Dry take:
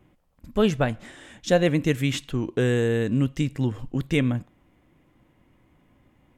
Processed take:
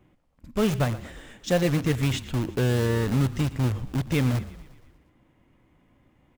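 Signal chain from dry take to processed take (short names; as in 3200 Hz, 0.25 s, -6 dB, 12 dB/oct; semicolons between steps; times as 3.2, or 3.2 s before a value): median filter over 3 samples; dynamic EQ 100 Hz, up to +7 dB, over -38 dBFS, Q 0.8; in parallel at -7.5 dB: wrapped overs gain 19.5 dB; on the sum: frequency-shifting echo 0.118 s, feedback 59%, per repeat -32 Hz, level -16.5 dB; gain -4.5 dB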